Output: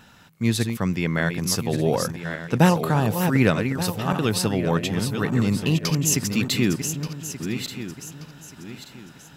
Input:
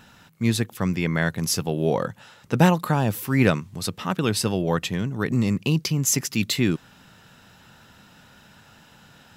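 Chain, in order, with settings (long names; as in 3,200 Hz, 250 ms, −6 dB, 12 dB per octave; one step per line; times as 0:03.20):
feedback delay that plays each chunk backwards 590 ms, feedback 54%, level −7 dB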